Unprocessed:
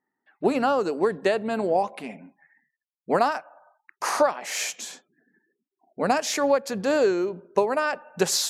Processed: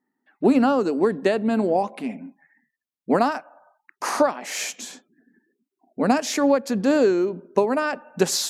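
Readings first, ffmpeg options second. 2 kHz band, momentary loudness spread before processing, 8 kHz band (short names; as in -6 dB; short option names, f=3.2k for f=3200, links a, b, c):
0.0 dB, 9 LU, 0.0 dB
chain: -af "equalizer=f=250:t=o:w=0.79:g=10.5"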